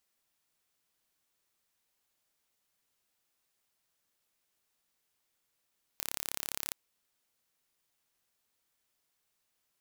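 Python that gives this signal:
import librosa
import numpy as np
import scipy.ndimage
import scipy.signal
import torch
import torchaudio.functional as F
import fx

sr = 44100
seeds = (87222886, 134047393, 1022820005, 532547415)

y = 10.0 ** (-8.0 / 20.0) * (np.mod(np.arange(round(0.73 * sr)), round(sr / 34.8)) == 0)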